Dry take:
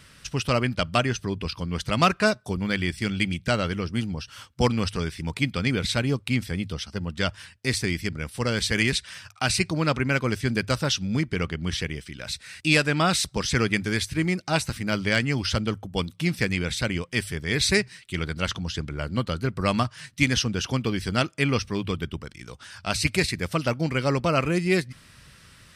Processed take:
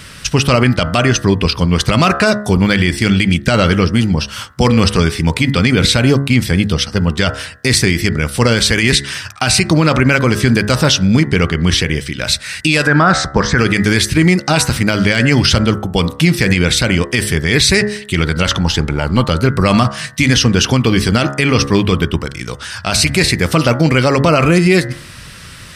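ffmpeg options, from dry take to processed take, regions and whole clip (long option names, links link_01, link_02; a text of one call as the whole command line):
ffmpeg -i in.wav -filter_complex "[0:a]asettb=1/sr,asplit=3[link_01][link_02][link_03];[link_01]atrim=end=12.874[link_04];[link_02]atrim=start=12.87:end=13.58,asetpts=PTS-STARTPTS,afade=type=in:duration=0.004:curve=qsin,afade=type=out:start_time=0.706:duration=0.004:curve=qsin,lowpass=frequency=6900:width=0.5412,lowpass=frequency=6900:width=1.3066,highshelf=frequency=2100:width_type=q:width=3:gain=-8[link_05];[link_03]atrim=start=13.576[link_06];[link_04][link_05]acrossfade=duration=0.004:curve1=hsin:curve2=qsin[link_07];[link_07][link_06]acrossfade=duration=0.004:curve1=qsin:curve2=hsin,asettb=1/sr,asplit=3[link_08][link_09][link_10];[link_08]atrim=end=18.604[link_11];[link_09]atrim=start=18.6:end=19.31,asetpts=PTS-STARTPTS,afade=type=in:duration=0.004:curve=qsin,afade=type=out:start_time=0.706:duration=0.004:curve=qsin,aeval=exprs='if(lt(val(0),0),0.708*val(0),val(0))':channel_layout=same,equalizer=frequency=850:width_type=o:width=0.21:gain=14[link_12];[link_10]atrim=start=19.306[link_13];[link_11][link_12]acrossfade=duration=0.004:curve1=hsin:curve2=qsin[link_14];[link_14][link_13]acrossfade=duration=0.004:curve1=qsin:curve2=hsin,bandreject=frequency=69.51:width_type=h:width=4,bandreject=frequency=139.02:width_type=h:width=4,bandreject=frequency=208.53:width_type=h:width=4,bandreject=frequency=278.04:width_type=h:width=4,bandreject=frequency=347.55:width_type=h:width=4,bandreject=frequency=417.06:width_type=h:width=4,bandreject=frequency=486.57:width_type=h:width=4,bandreject=frequency=556.08:width_type=h:width=4,bandreject=frequency=625.59:width_type=h:width=4,bandreject=frequency=695.1:width_type=h:width=4,bandreject=frequency=764.61:width_type=h:width=4,bandreject=frequency=834.12:width_type=h:width=4,bandreject=frequency=903.63:width_type=h:width=4,bandreject=frequency=973.14:width_type=h:width=4,bandreject=frequency=1042.65:width_type=h:width=4,bandreject=frequency=1112.16:width_type=h:width=4,bandreject=frequency=1181.67:width_type=h:width=4,bandreject=frequency=1251.18:width_type=h:width=4,bandreject=frequency=1320.69:width_type=h:width=4,bandreject=frequency=1390.2:width_type=h:width=4,bandreject=frequency=1459.71:width_type=h:width=4,bandreject=frequency=1529.22:width_type=h:width=4,bandreject=frequency=1598.73:width_type=h:width=4,bandreject=frequency=1668.24:width_type=h:width=4,bandreject=frequency=1737.75:width_type=h:width=4,bandreject=frequency=1807.26:width_type=h:width=4,bandreject=frequency=1876.77:width_type=h:width=4,bandreject=frequency=1946.28:width_type=h:width=4,bandreject=frequency=2015.79:width_type=h:width=4,alimiter=level_in=18dB:limit=-1dB:release=50:level=0:latency=1,volume=-1dB" out.wav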